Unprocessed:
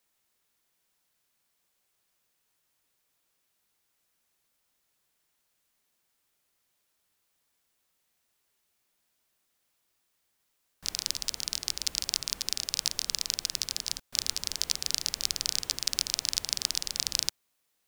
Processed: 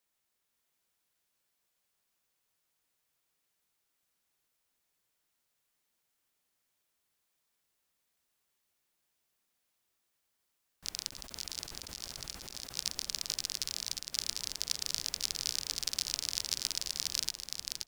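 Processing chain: 11.09–12.79 s: compressor with a negative ratio -40 dBFS, ratio -1; on a send: feedback delay 527 ms, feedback 26%, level -4 dB; on the sum: trim -6 dB

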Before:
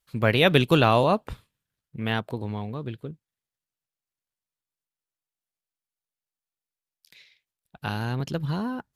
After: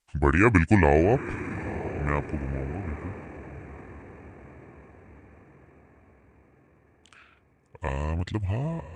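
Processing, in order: echo that smears into a reverb 923 ms, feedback 52%, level -13 dB; pitch shift -7.5 st

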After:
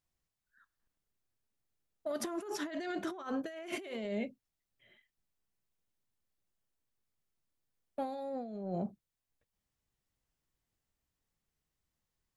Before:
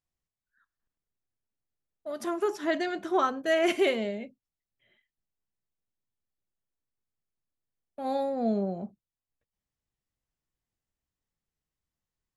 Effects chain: compressor with a negative ratio -36 dBFS, ratio -1; trim -3.5 dB

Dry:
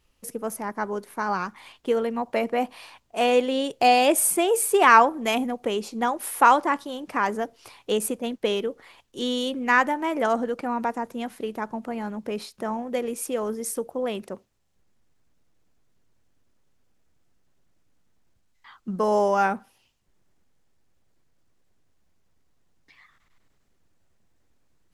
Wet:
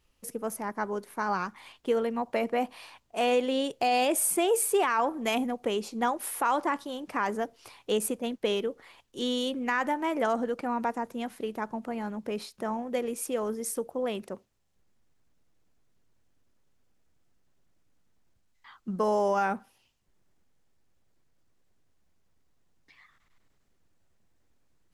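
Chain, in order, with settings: peak limiter -14 dBFS, peak gain reduction 12 dB; trim -3 dB

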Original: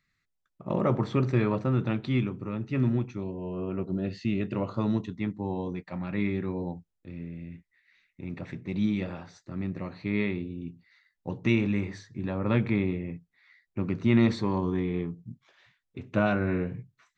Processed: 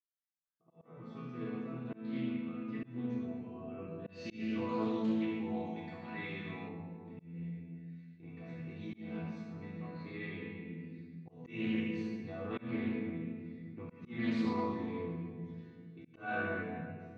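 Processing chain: fade-in on the opening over 3.59 s; high-pass 47 Hz 24 dB/octave; treble shelf 5.3 kHz -8 dB; chord resonator E3 sus4, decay 0.8 s; simulated room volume 3700 m³, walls mixed, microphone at 3.5 m; slow attack 221 ms; 4.09–6.69 s: treble shelf 2.5 kHz +11.5 dB; loudspeaker Doppler distortion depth 0.17 ms; trim +9.5 dB

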